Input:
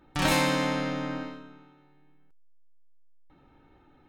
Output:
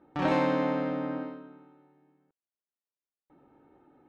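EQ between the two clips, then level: band-pass filter 340 Hz, Q 0.65; distance through air 67 m; bass shelf 290 Hz -7.5 dB; +5.0 dB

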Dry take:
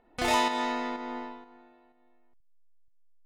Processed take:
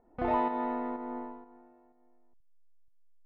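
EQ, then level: low-pass 1 kHz 12 dB/octave; distance through air 140 m; 0.0 dB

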